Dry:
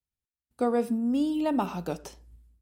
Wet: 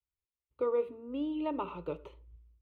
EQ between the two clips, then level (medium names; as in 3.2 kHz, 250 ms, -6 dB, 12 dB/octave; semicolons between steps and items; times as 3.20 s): distance through air 280 m; static phaser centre 1.1 kHz, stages 8; -1.5 dB